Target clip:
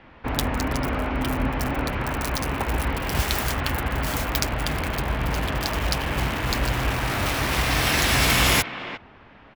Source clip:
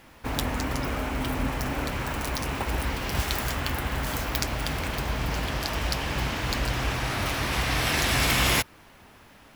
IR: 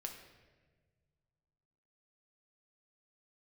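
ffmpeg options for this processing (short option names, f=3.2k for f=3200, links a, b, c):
-filter_complex "[0:a]acrossover=split=150|3500[a][b][c];[b]aecho=1:1:352:0.266[d];[c]acrusher=bits=5:mix=0:aa=0.000001[e];[a][d][e]amix=inputs=3:normalize=0,volume=3.5dB"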